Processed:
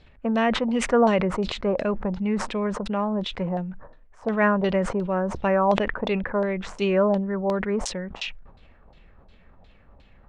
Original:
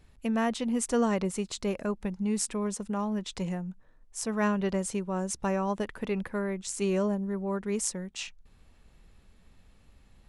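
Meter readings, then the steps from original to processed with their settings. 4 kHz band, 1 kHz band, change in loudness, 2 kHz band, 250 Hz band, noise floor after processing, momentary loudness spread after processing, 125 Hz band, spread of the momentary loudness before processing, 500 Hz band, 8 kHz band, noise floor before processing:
+7.0 dB, +9.0 dB, +6.5 dB, +9.5 dB, +4.5 dB, -53 dBFS, 8 LU, +5.0 dB, 7 LU, +8.5 dB, -6.0 dB, -60 dBFS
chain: bell 580 Hz +6 dB 0.62 oct; LFO low-pass saw down 2.8 Hz 770–4200 Hz; sustainer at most 68 dB/s; gain +3.5 dB

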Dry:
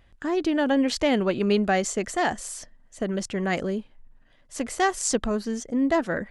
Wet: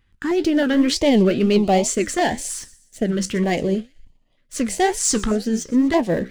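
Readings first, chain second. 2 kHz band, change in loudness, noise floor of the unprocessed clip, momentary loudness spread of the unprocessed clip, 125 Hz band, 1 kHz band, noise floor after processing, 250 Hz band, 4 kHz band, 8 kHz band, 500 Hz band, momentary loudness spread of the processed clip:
+1.5 dB, +5.5 dB, -58 dBFS, 11 LU, +8.0 dB, +3.5 dB, -62 dBFS, +6.5 dB, +6.0 dB, +7.5 dB, +5.0 dB, 10 LU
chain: sample leveller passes 2; flange 2 Hz, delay 7.5 ms, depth 9 ms, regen +65%; on a send: thin delay 0.123 s, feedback 41%, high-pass 3100 Hz, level -19 dB; on the sum: stepped notch 3.2 Hz 630–1600 Hz; gain +4.5 dB

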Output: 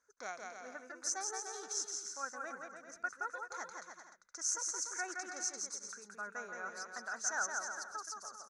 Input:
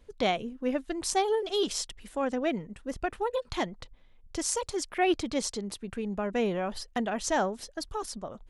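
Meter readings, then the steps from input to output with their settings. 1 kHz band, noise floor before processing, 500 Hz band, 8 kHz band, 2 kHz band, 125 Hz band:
-10.5 dB, -57 dBFS, -20.0 dB, 0.0 dB, -3.0 dB, under -25 dB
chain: double band-pass 3000 Hz, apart 2.1 oct; on a send: bouncing-ball echo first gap 0.17 s, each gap 0.75×, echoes 5; on the sum: gain +2.5 dB

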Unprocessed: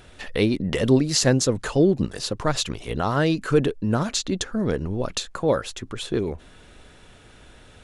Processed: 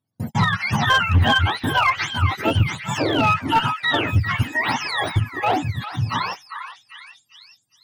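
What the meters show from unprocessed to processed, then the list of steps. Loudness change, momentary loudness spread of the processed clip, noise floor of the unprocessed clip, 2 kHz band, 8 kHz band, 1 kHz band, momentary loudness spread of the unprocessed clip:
+3.0 dB, 9 LU, -50 dBFS, +12.0 dB, -9.0 dB, +11.5 dB, 9 LU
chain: spectrum mirrored in octaves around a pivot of 640 Hz; in parallel at +1 dB: compressor 4:1, threshold -35 dBFS, peak gain reduction 19.5 dB; on the sum: gate -30 dBFS, range -42 dB; added harmonics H 5 -29 dB, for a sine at -5.5 dBFS; one-sided clip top -15 dBFS; on a send: delay with a stepping band-pass 0.4 s, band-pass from 1500 Hz, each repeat 0.7 oct, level -5.5 dB; on the sum: gain +1.5 dB

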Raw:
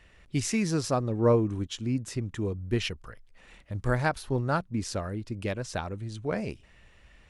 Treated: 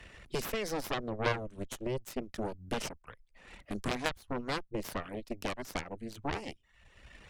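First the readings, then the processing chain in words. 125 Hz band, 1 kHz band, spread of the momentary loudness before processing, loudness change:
-13.0 dB, -4.0 dB, 10 LU, -7.5 dB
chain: reverb removal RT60 0.55 s; added harmonics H 2 -8 dB, 3 -8 dB, 4 -18 dB, 8 -18 dB, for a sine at -12.5 dBFS; three-band squash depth 70%

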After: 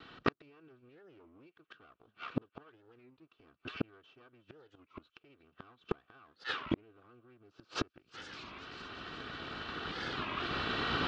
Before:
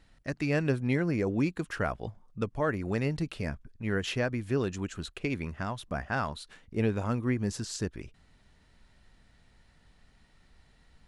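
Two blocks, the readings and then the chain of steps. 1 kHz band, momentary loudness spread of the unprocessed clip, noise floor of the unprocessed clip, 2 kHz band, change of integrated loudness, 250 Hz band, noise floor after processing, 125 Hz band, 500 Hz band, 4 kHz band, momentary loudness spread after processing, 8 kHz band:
-3.0 dB, 9 LU, -63 dBFS, -4.5 dB, -8.0 dB, -11.0 dB, -79 dBFS, -15.5 dB, -11.5 dB, +1.5 dB, 23 LU, -15.0 dB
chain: minimum comb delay 2.6 ms; recorder AGC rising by 6 dB/s; low shelf 270 Hz -2.5 dB; in parallel at -10 dB: crossover distortion -54 dBFS; on the sum: limiter -24.5 dBFS, peak gain reduction 10 dB; speaker cabinet 160–3800 Hz, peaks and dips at 790 Hz -6 dB, 1300 Hz +9 dB, 2000 Hz -10 dB, 3000 Hz +3 dB; thin delay 0.36 s, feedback 61%, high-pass 1900 Hz, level -16.5 dB; flipped gate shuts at -33 dBFS, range -42 dB; record warp 33 1/3 rpm, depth 250 cents; gain +15.5 dB

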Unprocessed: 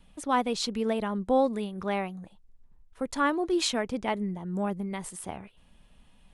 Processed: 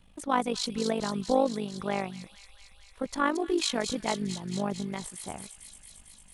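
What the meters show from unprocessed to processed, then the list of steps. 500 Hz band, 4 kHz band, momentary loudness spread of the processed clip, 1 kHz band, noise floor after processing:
-1.0 dB, +0.5 dB, 18 LU, -1.0 dB, -55 dBFS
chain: AM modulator 50 Hz, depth 55%; thin delay 0.225 s, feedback 76%, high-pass 4100 Hz, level -4 dB; gain +2 dB

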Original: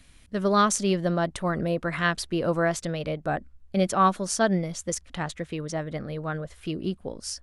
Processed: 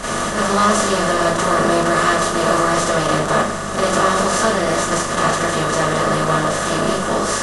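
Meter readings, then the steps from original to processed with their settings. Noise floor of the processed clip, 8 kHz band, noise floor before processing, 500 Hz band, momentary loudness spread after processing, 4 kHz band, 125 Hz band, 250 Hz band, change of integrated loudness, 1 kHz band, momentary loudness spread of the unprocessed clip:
-22 dBFS, +11.0 dB, -55 dBFS, +10.0 dB, 3 LU, +12.5 dB, +5.5 dB, +7.0 dB, +10.0 dB, +11.5 dB, 12 LU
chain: per-bin compression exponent 0.2; hum 50 Hz, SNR 13 dB; Schroeder reverb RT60 0.44 s, combs from 26 ms, DRR -9.5 dB; gain -9.5 dB

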